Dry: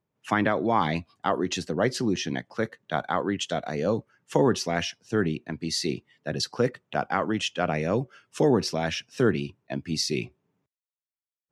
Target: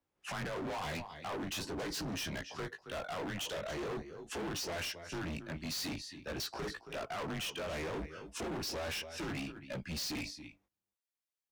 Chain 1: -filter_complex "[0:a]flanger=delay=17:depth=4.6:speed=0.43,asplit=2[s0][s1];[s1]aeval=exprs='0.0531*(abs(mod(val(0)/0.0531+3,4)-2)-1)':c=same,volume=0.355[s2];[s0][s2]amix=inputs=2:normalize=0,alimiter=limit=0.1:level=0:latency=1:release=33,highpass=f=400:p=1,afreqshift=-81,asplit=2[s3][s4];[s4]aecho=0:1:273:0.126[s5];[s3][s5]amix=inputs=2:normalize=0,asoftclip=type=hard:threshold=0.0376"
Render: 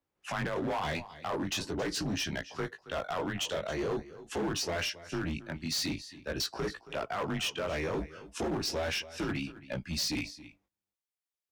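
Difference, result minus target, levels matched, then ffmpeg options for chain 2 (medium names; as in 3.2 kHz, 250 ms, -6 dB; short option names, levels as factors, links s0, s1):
hard clipper: distortion -7 dB
-filter_complex "[0:a]flanger=delay=17:depth=4.6:speed=0.43,asplit=2[s0][s1];[s1]aeval=exprs='0.0531*(abs(mod(val(0)/0.0531+3,4)-2)-1)':c=same,volume=0.355[s2];[s0][s2]amix=inputs=2:normalize=0,alimiter=limit=0.1:level=0:latency=1:release=33,highpass=f=400:p=1,afreqshift=-81,asplit=2[s3][s4];[s4]aecho=0:1:273:0.126[s5];[s3][s5]amix=inputs=2:normalize=0,asoftclip=type=hard:threshold=0.0141"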